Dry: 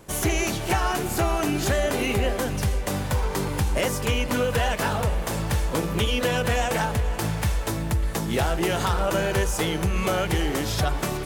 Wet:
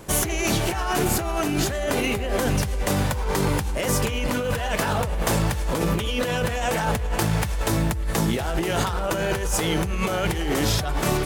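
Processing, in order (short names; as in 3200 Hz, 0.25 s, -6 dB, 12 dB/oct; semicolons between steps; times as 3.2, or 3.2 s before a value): negative-ratio compressor -27 dBFS, ratio -1; gain +3.5 dB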